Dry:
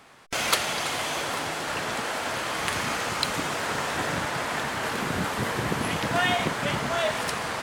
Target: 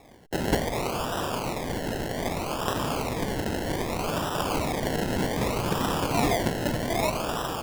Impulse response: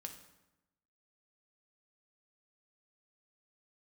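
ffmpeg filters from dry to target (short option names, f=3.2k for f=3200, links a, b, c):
-filter_complex "[0:a]asettb=1/sr,asplit=3[a][b][c];[a]atrim=end=4.394[d];[b]atrim=start=4.39:end=6.11,asetpts=PTS-STARTPTS,afade=t=in:d=0.004:c=qsin,afade=t=out:st=1.716:d=0.004:c=qsin,aemphasis=mode=production:type=50fm[e];[c]atrim=start=6.106[f];[d][e]acrossfade=d=0.004:c1=hsin:c2=qsin[g];[g][f]acrossfade=d=0.004:c1=qsin:c2=hsin,acrusher=samples=29:mix=1:aa=0.000001:lfo=1:lforange=17.4:lforate=0.64"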